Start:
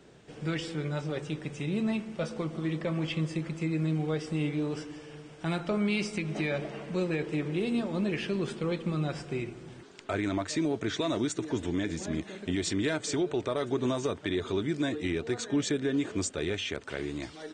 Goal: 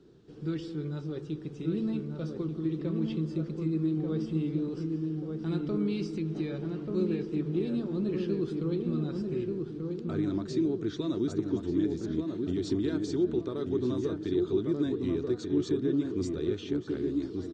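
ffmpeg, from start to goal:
-filter_complex "[0:a]firequalizer=gain_entry='entry(250,0);entry(350,5);entry(600,-12);entry(1300,-7);entry(2100,-16);entry(4100,-4);entry(8400,-17)':delay=0.05:min_phase=1,asplit=2[a][b];[b]adelay=1186,lowpass=f=1.4k:p=1,volume=-3.5dB,asplit=2[c][d];[d]adelay=1186,lowpass=f=1.4k:p=1,volume=0.46,asplit=2[e][f];[f]adelay=1186,lowpass=f=1.4k:p=1,volume=0.46,asplit=2[g][h];[h]adelay=1186,lowpass=f=1.4k:p=1,volume=0.46,asplit=2[i][j];[j]adelay=1186,lowpass=f=1.4k:p=1,volume=0.46,asplit=2[k][l];[l]adelay=1186,lowpass=f=1.4k:p=1,volume=0.46[m];[c][e][g][i][k][m]amix=inputs=6:normalize=0[n];[a][n]amix=inputs=2:normalize=0,volume=-2dB"

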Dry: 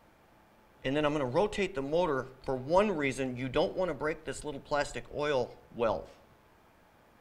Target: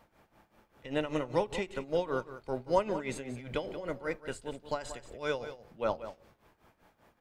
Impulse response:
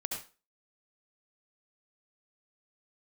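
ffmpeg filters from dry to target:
-af "tremolo=f=5.1:d=0.8,aecho=1:1:181:0.237"

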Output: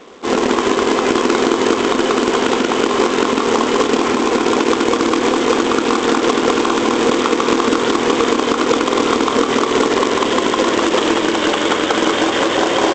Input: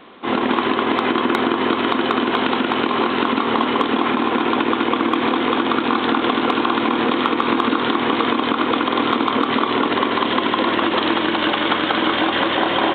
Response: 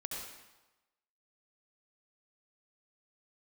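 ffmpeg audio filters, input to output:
-af "equalizer=f=450:w=2.1:g=9,aresample=16000,acrusher=bits=2:mode=log:mix=0:aa=0.000001,aresample=44100"

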